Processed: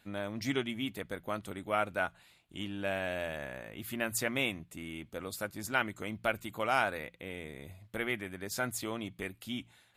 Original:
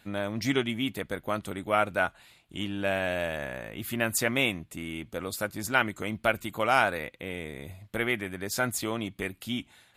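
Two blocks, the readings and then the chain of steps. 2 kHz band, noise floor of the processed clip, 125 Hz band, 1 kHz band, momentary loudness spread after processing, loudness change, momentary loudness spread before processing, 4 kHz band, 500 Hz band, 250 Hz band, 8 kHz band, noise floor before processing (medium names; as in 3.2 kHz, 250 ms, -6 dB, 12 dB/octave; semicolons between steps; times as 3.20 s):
-6.0 dB, -65 dBFS, -6.5 dB, -6.0 dB, 12 LU, -6.0 dB, 12 LU, -6.0 dB, -6.0 dB, -6.0 dB, -6.0 dB, -62 dBFS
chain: de-hum 57.72 Hz, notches 3; trim -6 dB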